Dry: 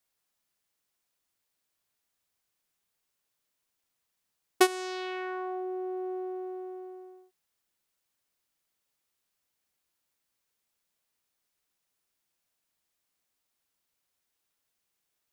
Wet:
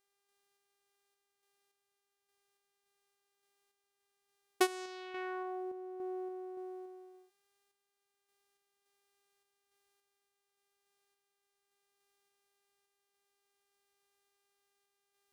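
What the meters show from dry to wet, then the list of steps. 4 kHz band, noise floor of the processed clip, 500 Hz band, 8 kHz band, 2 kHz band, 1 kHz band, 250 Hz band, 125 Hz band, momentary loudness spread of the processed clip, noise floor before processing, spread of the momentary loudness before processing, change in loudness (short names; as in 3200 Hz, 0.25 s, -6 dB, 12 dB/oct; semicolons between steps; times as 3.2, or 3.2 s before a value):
-7.5 dB, -85 dBFS, -7.0 dB, -7.5 dB, -7.0 dB, -7.0 dB, -7.0 dB, n/a, 16 LU, -82 dBFS, 16 LU, -7.0 dB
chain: buzz 400 Hz, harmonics 31, -75 dBFS -3 dB/oct; random-step tremolo; gain -4.5 dB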